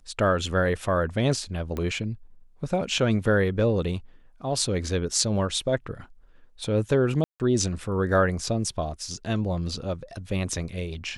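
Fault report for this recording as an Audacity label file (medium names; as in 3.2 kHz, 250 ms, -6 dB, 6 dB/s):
1.770000	1.770000	pop -18 dBFS
7.240000	7.400000	dropout 158 ms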